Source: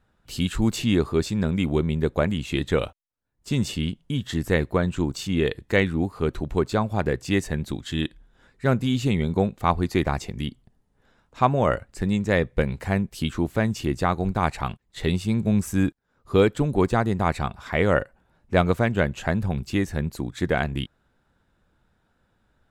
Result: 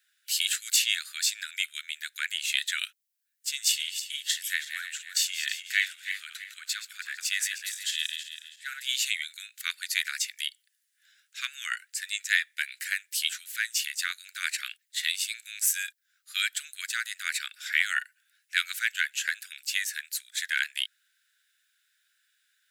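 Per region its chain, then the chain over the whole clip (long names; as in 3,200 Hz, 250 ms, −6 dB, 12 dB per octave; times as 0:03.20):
0:03.51–0:08.89: feedback delay that plays each chunk backwards 163 ms, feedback 58%, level −7.5 dB + downward compressor 1.5 to 1, threshold −27 dBFS + multiband upward and downward expander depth 40%
whole clip: Butterworth high-pass 1,500 Hz 72 dB per octave; spectral tilt +4 dB per octave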